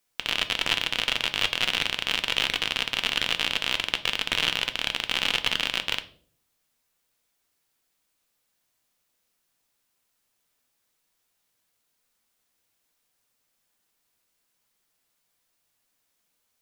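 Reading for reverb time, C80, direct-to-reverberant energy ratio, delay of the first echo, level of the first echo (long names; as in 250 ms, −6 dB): 0.50 s, 21.0 dB, 8.5 dB, no echo audible, no echo audible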